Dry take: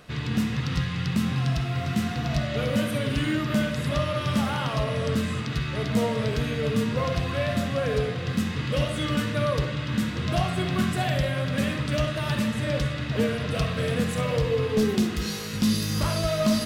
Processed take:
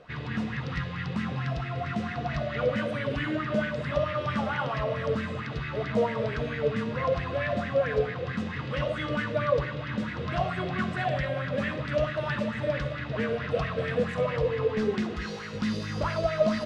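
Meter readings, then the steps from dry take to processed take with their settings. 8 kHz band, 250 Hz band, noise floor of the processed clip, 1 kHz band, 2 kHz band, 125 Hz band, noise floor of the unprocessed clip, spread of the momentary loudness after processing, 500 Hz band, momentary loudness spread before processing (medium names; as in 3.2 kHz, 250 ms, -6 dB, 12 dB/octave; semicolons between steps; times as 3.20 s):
under -15 dB, -6.0 dB, -36 dBFS, -0.5 dB, -0.5 dB, -6.5 dB, -31 dBFS, 5 LU, +0.5 dB, 3 LU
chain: distance through air 120 m; sweeping bell 4.5 Hz 480–2000 Hz +14 dB; trim -6.5 dB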